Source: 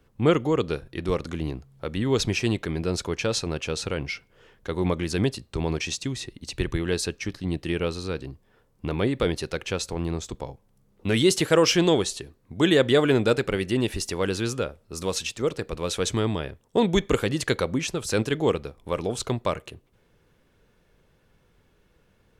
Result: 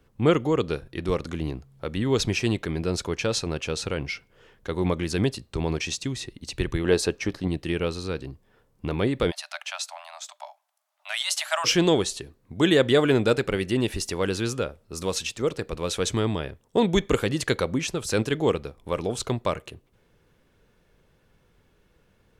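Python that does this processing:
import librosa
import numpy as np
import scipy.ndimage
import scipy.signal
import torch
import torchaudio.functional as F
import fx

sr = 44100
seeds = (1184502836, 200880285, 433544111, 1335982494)

y = fx.peak_eq(x, sr, hz=610.0, db=7.5, octaves=2.5, at=(6.84, 7.48))
y = fx.cheby1_highpass(y, sr, hz=590.0, order=10, at=(9.3, 11.64), fade=0.02)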